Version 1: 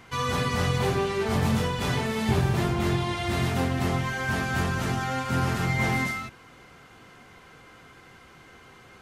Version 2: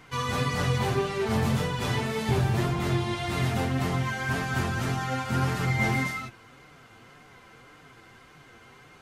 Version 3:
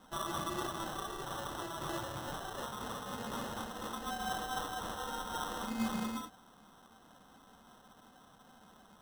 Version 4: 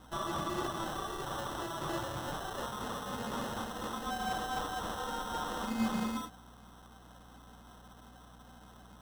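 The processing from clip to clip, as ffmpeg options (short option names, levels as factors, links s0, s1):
-af "flanger=delay=6.5:depth=2.6:regen=40:speed=1.8:shape=sinusoidal,volume=1.33"
-af "highpass=f=1000:w=0.5412,highpass=f=1000:w=1.3066,acrusher=samples=19:mix=1:aa=0.000001,volume=0.562"
-filter_complex "[0:a]aeval=exprs='val(0)+0.001*(sin(2*PI*60*n/s)+sin(2*PI*2*60*n/s)/2+sin(2*PI*3*60*n/s)/3+sin(2*PI*4*60*n/s)/4+sin(2*PI*5*60*n/s)/5)':c=same,acrossover=split=760[s0][s1];[s1]asoftclip=type=hard:threshold=0.0141[s2];[s0][s2]amix=inputs=2:normalize=0,volume=1.41"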